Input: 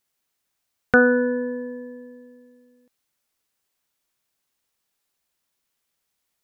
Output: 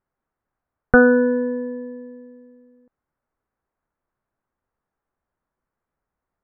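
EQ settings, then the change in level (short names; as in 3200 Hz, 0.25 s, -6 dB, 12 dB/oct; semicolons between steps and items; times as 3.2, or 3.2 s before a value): LPF 1500 Hz 24 dB/oct; low shelf 74 Hz +11 dB; +3.5 dB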